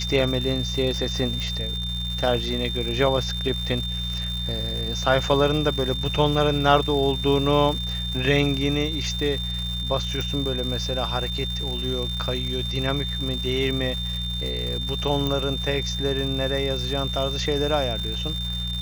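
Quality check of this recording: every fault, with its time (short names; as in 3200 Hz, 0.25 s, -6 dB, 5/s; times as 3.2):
crackle 350/s -30 dBFS
hum 60 Hz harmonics 3 -30 dBFS
tone 3600 Hz -29 dBFS
1.4 pop
10.21 pop
15.27 pop -12 dBFS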